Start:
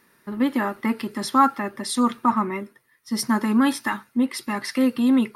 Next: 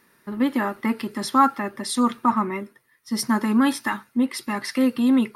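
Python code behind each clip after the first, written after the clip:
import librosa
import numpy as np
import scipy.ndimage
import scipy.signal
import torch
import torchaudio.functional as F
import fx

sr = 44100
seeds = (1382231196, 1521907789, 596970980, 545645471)

y = x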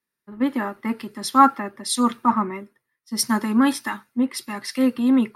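y = fx.band_widen(x, sr, depth_pct=70)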